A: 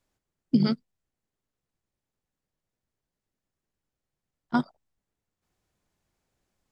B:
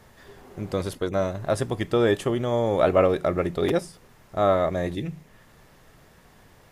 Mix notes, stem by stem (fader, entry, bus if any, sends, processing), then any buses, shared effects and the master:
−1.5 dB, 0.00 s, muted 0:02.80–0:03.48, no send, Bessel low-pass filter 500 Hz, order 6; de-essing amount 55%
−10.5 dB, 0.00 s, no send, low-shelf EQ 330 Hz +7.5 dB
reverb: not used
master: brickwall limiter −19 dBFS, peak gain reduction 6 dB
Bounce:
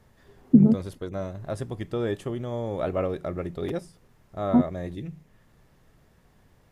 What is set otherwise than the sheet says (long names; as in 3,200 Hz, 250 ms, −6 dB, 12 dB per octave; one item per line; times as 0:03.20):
stem A −1.5 dB → +7.0 dB
master: missing brickwall limiter −19 dBFS, peak gain reduction 6 dB